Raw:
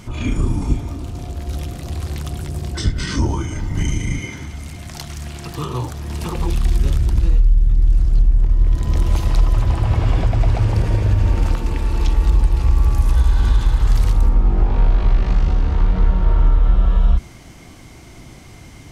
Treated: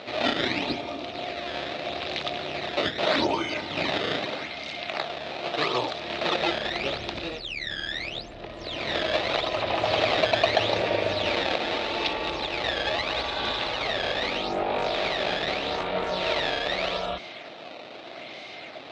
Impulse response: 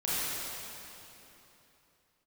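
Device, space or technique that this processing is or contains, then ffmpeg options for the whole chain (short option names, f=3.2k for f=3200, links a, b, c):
circuit-bent sampling toy: -af "acrusher=samples=15:mix=1:aa=0.000001:lfo=1:lforange=24:lforate=0.8,highpass=530,equalizer=f=620:t=q:w=4:g=8,equalizer=f=1k:t=q:w=4:g=-7,equalizer=f=1.5k:t=q:w=4:g=-4,equalizer=f=2.5k:t=q:w=4:g=4,equalizer=f=3.8k:t=q:w=4:g=8,lowpass=f=4.4k:w=0.5412,lowpass=f=4.4k:w=1.3066,volume=6dB"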